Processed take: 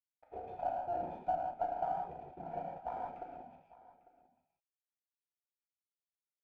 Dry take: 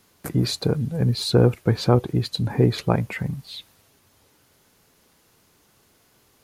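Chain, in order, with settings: Doppler pass-by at 1.55, 20 m/s, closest 12 m; spectral gate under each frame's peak -15 dB weak; bell 150 Hz +13.5 dB 0.99 oct; compressor 16:1, threshold -41 dBFS, peak gain reduction 19 dB; companded quantiser 4-bit; vocal tract filter a; step gate "xxx.x.xxx..x" 190 bpm -60 dB; Butterworth band-stop 1100 Hz, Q 2.6; on a send: echo 0.849 s -19 dB; on the sum: non-linear reverb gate 0.21 s flat, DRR -2.5 dB; running maximum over 3 samples; gain +18 dB

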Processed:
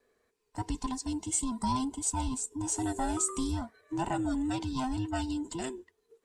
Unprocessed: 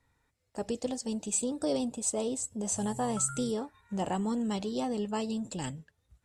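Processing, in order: band inversion scrambler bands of 500 Hz

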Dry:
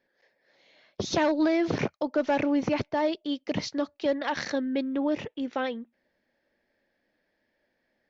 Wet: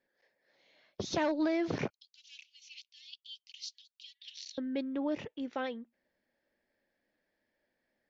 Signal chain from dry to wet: 1.9–4.58 steep high-pass 2800 Hz 48 dB/oct; gain -6.5 dB

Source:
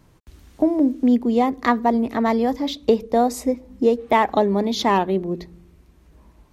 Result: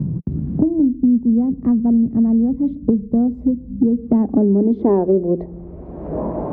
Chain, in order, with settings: self-modulated delay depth 0.11 ms; low-pass sweep 170 Hz -> 630 Hz, 3.85–5.41; three-band squash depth 100%; gain +6 dB

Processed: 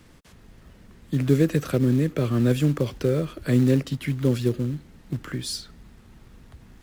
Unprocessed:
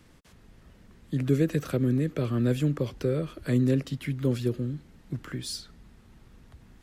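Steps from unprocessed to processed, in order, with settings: in parallel at -3.5 dB: short-mantissa float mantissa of 2-bit; 2.51–2.98 on the sum: mismatched tape noise reduction encoder only

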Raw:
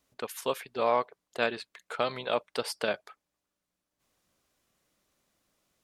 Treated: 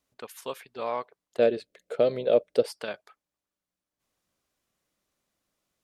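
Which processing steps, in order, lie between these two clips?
1.39–2.66 resonant low shelf 720 Hz +10 dB, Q 3; gain -5 dB

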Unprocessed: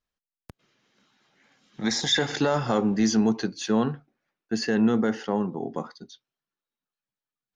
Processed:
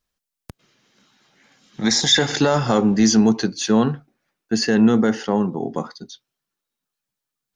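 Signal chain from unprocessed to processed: tone controls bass +2 dB, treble +5 dB; gain +5.5 dB

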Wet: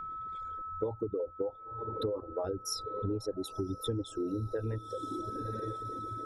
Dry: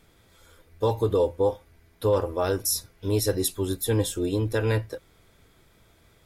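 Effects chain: formant sharpening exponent 2; dynamic EQ 310 Hz, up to +3 dB, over -33 dBFS, Q 1.8; on a send: diffused feedback echo 0.974 s, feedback 50%, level -16 dB; on the sum: reverb removal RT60 1.2 s; air absorption 87 m; in parallel at -2.5 dB: level quantiser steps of 11 dB; on the sum: whine 1300 Hz -38 dBFS; compressor 12:1, threshold -31 dBFS, peak gain reduction 17.5 dB

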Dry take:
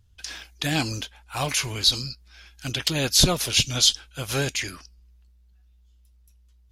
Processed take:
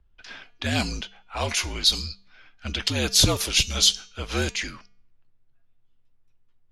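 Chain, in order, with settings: de-hum 249.1 Hz, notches 33; low-pass opened by the level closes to 2000 Hz, open at -18.5 dBFS; frequency shift -53 Hz

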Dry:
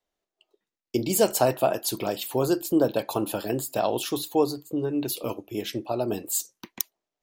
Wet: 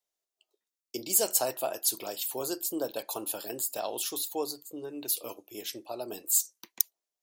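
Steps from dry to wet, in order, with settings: tone controls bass -13 dB, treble +12 dB; gain -9 dB

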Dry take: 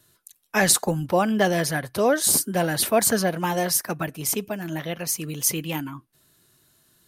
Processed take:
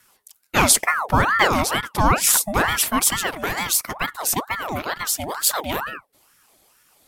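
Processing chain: 2.78–3.96 bell 310 Hz -13.5 dB 1.5 oct; ring modulator with a swept carrier 1000 Hz, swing 60%, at 2.2 Hz; gain +6 dB

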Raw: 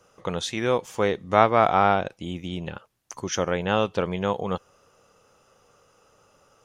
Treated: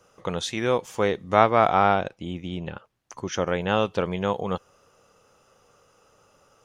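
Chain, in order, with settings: 2.09–3.47 LPF 3500 Hz 6 dB/oct

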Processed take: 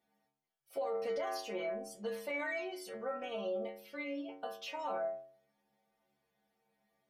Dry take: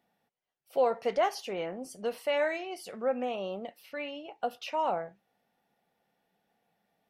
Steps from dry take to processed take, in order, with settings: notch 2700 Hz, Q 29; metallic resonator 67 Hz, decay 0.8 s, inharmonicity 0.008; limiter -38.5 dBFS, peak gain reduction 11.5 dB; gain +9 dB

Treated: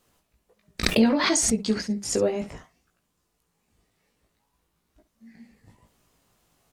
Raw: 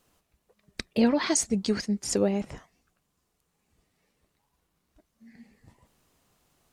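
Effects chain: early reflections 18 ms -3.5 dB, 68 ms -13.5 dB; 0.83–1.61 backwards sustainer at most 36 dB/s

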